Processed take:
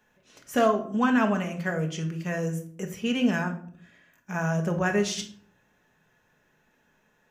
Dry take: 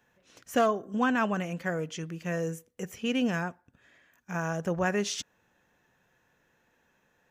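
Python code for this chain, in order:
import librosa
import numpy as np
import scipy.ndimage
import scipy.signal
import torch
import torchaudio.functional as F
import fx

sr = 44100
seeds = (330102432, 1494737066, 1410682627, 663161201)

y = fx.room_shoebox(x, sr, seeds[0], volume_m3=660.0, walls='furnished', distance_m=1.4)
y = y * 10.0 ** (1.0 / 20.0)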